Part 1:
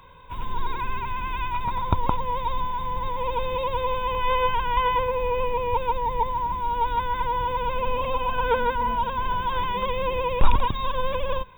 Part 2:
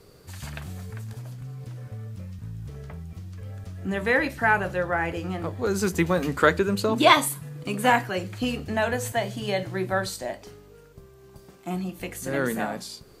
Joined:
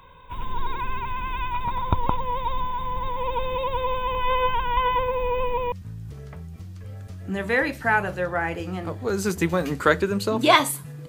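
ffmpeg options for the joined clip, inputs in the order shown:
ffmpeg -i cue0.wav -i cue1.wav -filter_complex "[0:a]apad=whole_dur=11.08,atrim=end=11.08,atrim=end=5.722[link_01];[1:a]atrim=start=2.288:end=7.65[link_02];[link_01][link_02]acrossfade=duration=0.004:curve1=hsin:curve2=hsin" out.wav

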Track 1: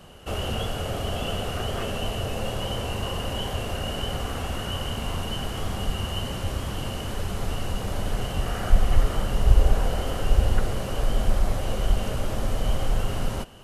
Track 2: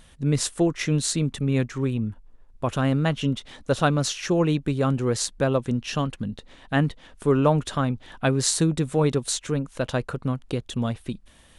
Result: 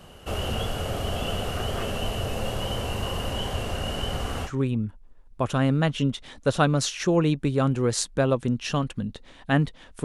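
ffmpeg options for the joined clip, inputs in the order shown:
ffmpeg -i cue0.wav -i cue1.wav -filter_complex "[0:a]asettb=1/sr,asplit=3[link_01][link_02][link_03];[link_01]atrim=end=3.304[link_04];[link_02]atrim=start=3.3:end=4.51,asetpts=PTS-STARTPTS,afade=type=in:duration=0.004:curve=qsin,afade=type=out:start_time=1.206:duration=0.004:curve=qsin,lowpass=12000[link_05];[link_03]atrim=start=4.506[link_06];[link_04][link_05]acrossfade=duration=0.004:curve1=hsin:curve2=qsin[link_07];[link_07][link_06]acrossfade=duration=0.004:curve1=qsin:curve2=hsin,apad=whole_dur=10.04,atrim=end=10.04,atrim=end=4.51,asetpts=PTS-STARTPTS[link_08];[1:a]atrim=start=1.66:end=7.27,asetpts=PTS-STARTPTS[link_09];[link_08][link_09]acrossfade=duration=0.08:curve1=tri:curve2=tri" out.wav

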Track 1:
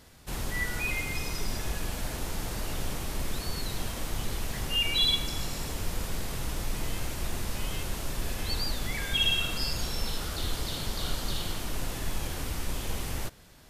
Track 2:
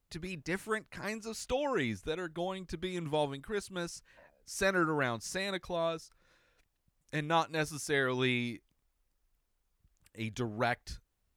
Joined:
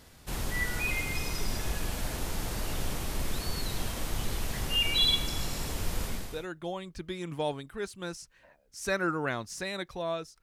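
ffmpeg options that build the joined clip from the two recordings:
ffmpeg -i cue0.wav -i cue1.wav -filter_complex "[0:a]apad=whole_dur=10.42,atrim=end=10.42,atrim=end=6.47,asetpts=PTS-STARTPTS[link_01];[1:a]atrim=start=1.77:end=6.16,asetpts=PTS-STARTPTS[link_02];[link_01][link_02]acrossfade=duration=0.44:curve1=tri:curve2=tri" out.wav

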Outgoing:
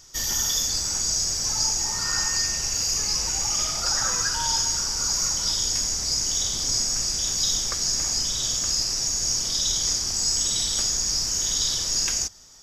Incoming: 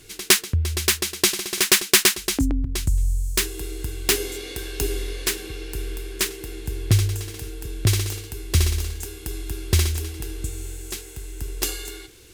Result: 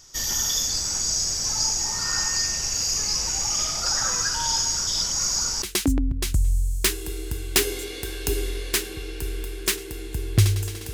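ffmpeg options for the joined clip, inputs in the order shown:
ffmpeg -i cue0.wav -i cue1.wav -filter_complex "[0:a]apad=whole_dur=10.93,atrim=end=10.93,asplit=2[link_01][link_02];[link_01]atrim=end=4.872[link_03];[link_02]atrim=start=4.868:end=5.622,asetpts=PTS-STARTPTS,areverse[link_04];[1:a]atrim=start=2.148:end=7.46[link_05];[link_03][link_04]acrossfade=duration=0.004:curve1=hsin:curve2=hsin[link_06];[link_06][link_05]acrossfade=duration=0.004:curve1=hsin:curve2=hsin" out.wav

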